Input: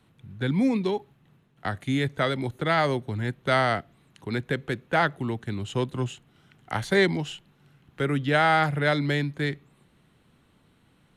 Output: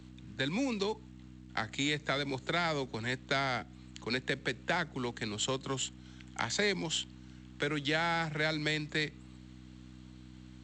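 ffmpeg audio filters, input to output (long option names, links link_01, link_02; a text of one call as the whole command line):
ffmpeg -i in.wav -filter_complex "[0:a]aeval=exprs='val(0)+0.0112*(sin(2*PI*60*n/s)+sin(2*PI*2*60*n/s)/2+sin(2*PI*3*60*n/s)/3+sin(2*PI*4*60*n/s)/4+sin(2*PI*5*60*n/s)/5)':channel_layout=same,lowshelf=frequency=180:gain=4.5,acrossover=split=83|320[link_01][link_02][link_03];[link_01]acompressor=threshold=-44dB:ratio=4[link_04];[link_02]acompressor=threshold=-28dB:ratio=4[link_05];[link_03]acompressor=threshold=-32dB:ratio=4[link_06];[link_04][link_05][link_06]amix=inputs=3:normalize=0,aemphasis=mode=production:type=riaa,aresample=16000,acrusher=bits=6:mode=log:mix=0:aa=0.000001,aresample=44100,asetrate=46305,aresample=44100" out.wav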